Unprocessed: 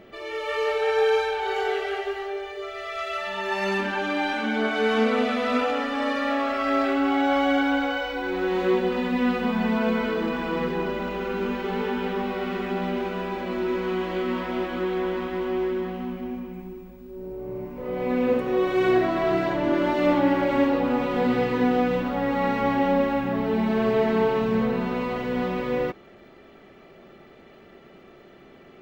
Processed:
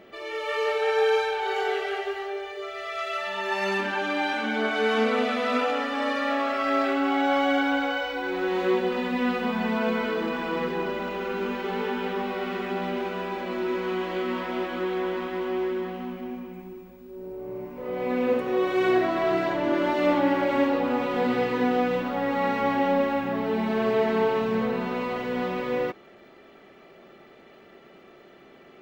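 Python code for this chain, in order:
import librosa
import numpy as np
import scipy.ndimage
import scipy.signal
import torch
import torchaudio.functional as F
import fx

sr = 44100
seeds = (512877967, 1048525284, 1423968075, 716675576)

y = fx.low_shelf(x, sr, hz=160.0, db=-10.5)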